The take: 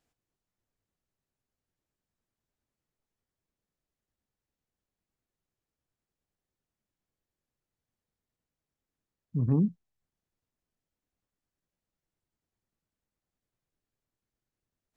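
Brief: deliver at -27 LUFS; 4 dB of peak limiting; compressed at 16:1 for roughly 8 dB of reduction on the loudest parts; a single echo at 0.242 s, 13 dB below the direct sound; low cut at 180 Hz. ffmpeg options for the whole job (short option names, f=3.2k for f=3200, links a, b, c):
-af "highpass=180,acompressor=threshold=-31dB:ratio=16,alimiter=level_in=6dB:limit=-24dB:level=0:latency=1,volume=-6dB,aecho=1:1:242:0.224,volume=13dB"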